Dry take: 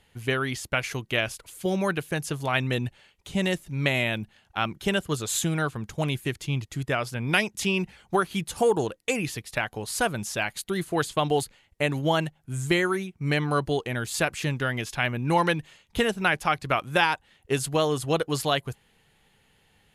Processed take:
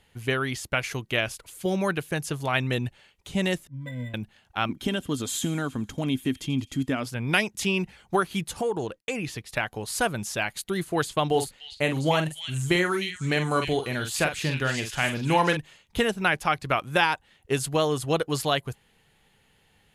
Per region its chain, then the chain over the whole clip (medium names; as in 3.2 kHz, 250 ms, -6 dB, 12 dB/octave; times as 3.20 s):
3.67–4.14 s: pitch-class resonator B, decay 0.16 s + decimation joined by straight lines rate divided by 8×
4.69–7.06 s: compression 2:1, threshold -29 dBFS + small resonant body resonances 260/3200 Hz, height 17 dB, ringing for 85 ms + feedback echo behind a high-pass 86 ms, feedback 56%, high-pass 3.8 kHz, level -16.5 dB
8.53–9.49 s: expander -53 dBFS + treble shelf 9.1 kHz -10 dB + compression 2:1, threshold -27 dBFS
11.28–15.57 s: de-esser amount 30% + doubling 45 ms -8 dB + repeats whose band climbs or falls 301 ms, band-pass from 3.4 kHz, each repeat 0.7 oct, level -2.5 dB
whole clip: none